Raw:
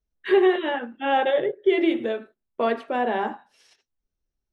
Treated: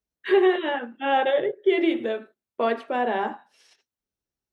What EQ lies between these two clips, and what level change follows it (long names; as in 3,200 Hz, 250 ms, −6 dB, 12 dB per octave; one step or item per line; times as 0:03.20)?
high-pass filter 70 Hz
low-shelf EQ 170 Hz −4.5 dB
0.0 dB